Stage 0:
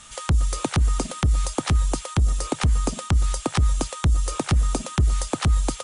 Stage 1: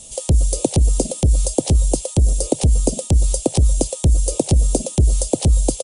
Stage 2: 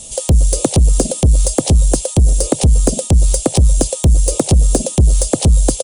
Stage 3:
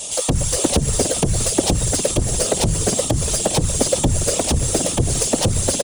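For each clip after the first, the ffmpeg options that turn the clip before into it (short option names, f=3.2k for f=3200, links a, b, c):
-af "firequalizer=gain_entry='entry(190,0);entry(550,7);entry(1300,-28);entry(2700,-8);entry(4600,-2);entry(9000,6)':delay=0.05:min_phase=1,volume=5dB"
-af "acontrast=89,volume=-1dB"
-filter_complex "[0:a]asplit=7[a][b][c][d][e][f][g];[b]adelay=407,afreqshift=-75,volume=-15dB[h];[c]adelay=814,afreqshift=-150,volume=-19.9dB[i];[d]adelay=1221,afreqshift=-225,volume=-24.8dB[j];[e]adelay=1628,afreqshift=-300,volume=-29.6dB[k];[f]adelay=2035,afreqshift=-375,volume=-34.5dB[l];[g]adelay=2442,afreqshift=-450,volume=-39.4dB[m];[a][h][i][j][k][l][m]amix=inputs=7:normalize=0,asplit=2[n][o];[o]highpass=f=720:p=1,volume=21dB,asoftclip=type=tanh:threshold=-1dB[p];[n][p]amix=inputs=2:normalize=0,lowpass=f=4.8k:p=1,volume=-6dB,afftfilt=real='hypot(re,im)*cos(2*PI*random(0))':imag='hypot(re,im)*sin(2*PI*random(1))':win_size=512:overlap=0.75"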